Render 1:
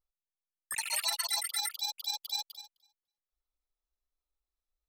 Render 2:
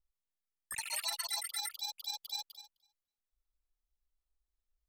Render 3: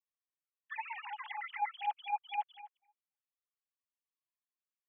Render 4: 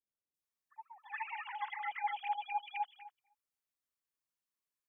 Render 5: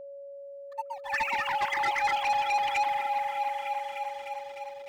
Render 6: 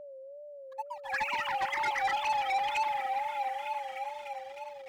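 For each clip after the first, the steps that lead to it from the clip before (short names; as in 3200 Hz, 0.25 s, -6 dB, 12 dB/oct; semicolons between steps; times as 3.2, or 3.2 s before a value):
low shelf 160 Hz +11.5 dB; gain -5 dB
sine-wave speech; gain +1 dB
three bands offset in time lows, highs, mids 0.34/0.42 s, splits 710/3200 Hz; gain +2 dB
repeats that get brighter 0.302 s, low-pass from 750 Hz, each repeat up 1 oct, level -6 dB; sample leveller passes 3; whine 560 Hz -45 dBFS; gain +4.5 dB
wow and flutter 93 cents; gain -3 dB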